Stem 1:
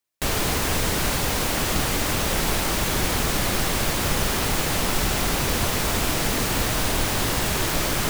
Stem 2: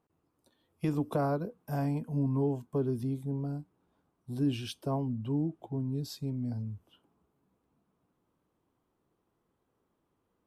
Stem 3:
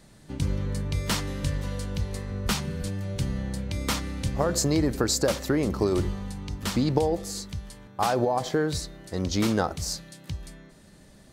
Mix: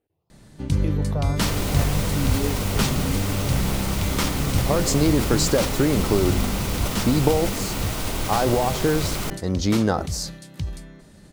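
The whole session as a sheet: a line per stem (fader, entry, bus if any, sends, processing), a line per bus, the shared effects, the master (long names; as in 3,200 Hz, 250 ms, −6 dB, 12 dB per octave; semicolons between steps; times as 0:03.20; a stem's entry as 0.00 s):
−6.0 dB, 1.20 s, no send, notch filter 1,700 Hz, Q 10
+0.5 dB, 0.00 s, no send, frequency shifter mixed with the dry sound +1.2 Hz
+1.5 dB, 0.30 s, no send, no processing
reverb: not used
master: low-shelf EQ 390 Hz +4 dB; level that may fall only so fast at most 90 dB per second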